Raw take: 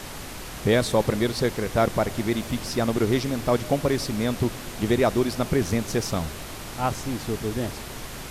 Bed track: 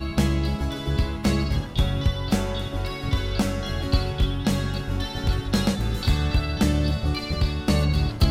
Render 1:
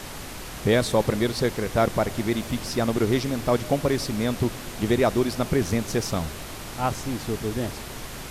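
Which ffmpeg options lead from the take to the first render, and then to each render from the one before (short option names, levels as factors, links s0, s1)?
-af anull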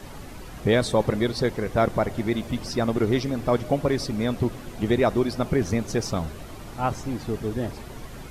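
-af "afftdn=nr=10:nf=-37"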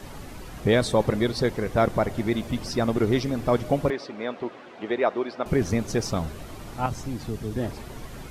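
-filter_complex "[0:a]asettb=1/sr,asplit=3[s0][s1][s2];[s0]atrim=end=3.904[s3];[s1]atrim=start=3.9:end=5.46,asetpts=PTS-STARTPTS,afade=t=in:d=0.004:c=qsin,afade=t=out:st=1.556:d=0.004:c=qsin,highpass=420,lowpass=2900[s4];[s2]atrim=start=5.456[s5];[s3][s4]acrossfade=d=0.004:c1=hsin:c2=qsin[s6];[s6][s5]acrossfade=d=0.004:c1=qsin:c2=hsin,asettb=1/sr,asplit=3[s7][s8][s9];[s7]atrim=end=6.864[s10];[s8]atrim=start=6.86:end=7.56,asetpts=PTS-STARTPTS,afade=t=in:d=0.004:c=qsin,afade=t=out:st=0.696:d=0.004:c=qsin,acrossover=split=220|3000[s11][s12][s13];[s12]acompressor=threshold=0.00708:ratio=1.5:attack=3.2:release=140:knee=2.83:detection=peak[s14];[s11][s14][s13]amix=inputs=3:normalize=0[s15];[s9]atrim=start=7.556[s16];[s10][s15]acrossfade=d=0.004:c1=hsin:c2=qsin[s17];[s17][s16]acrossfade=d=0.004:c1=qsin:c2=hsin"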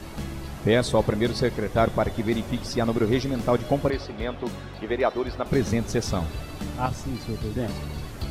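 -filter_complex "[1:a]volume=0.224[s0];[0:a][s0]amix=inputs=2:normalize=0"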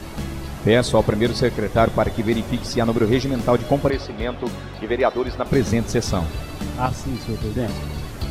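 -af "volume=1.68"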